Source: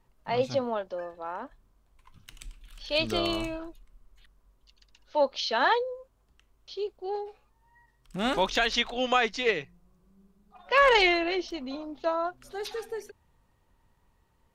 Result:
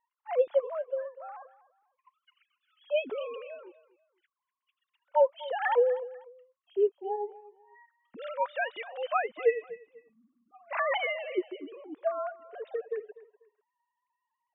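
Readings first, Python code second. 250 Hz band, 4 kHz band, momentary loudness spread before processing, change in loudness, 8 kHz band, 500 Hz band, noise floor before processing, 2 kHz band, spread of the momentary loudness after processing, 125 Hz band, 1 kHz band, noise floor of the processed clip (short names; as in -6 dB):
-11.0 dB, -15.5 dB, 17 LU, -3.5 dB, under -35 dB, 0.0 dB, -68 dBFS, -7.5 dB, 18 LU, under -30 dB, -5.0 dB, under -85 dBFS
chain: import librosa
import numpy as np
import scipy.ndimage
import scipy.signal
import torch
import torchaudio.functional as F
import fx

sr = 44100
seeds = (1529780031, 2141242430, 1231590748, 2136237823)

y = fx.sine_speech(x, sr)
y = fx.high_shelf(y, sr, hz=2800.0, db=-11.5)
y = fx.echo_feedback(y, sr, ms=246, feedback_pct=27, wet_db=-18.0)
y = F.gain(torch.from_numpy(y), -2.0).numpy()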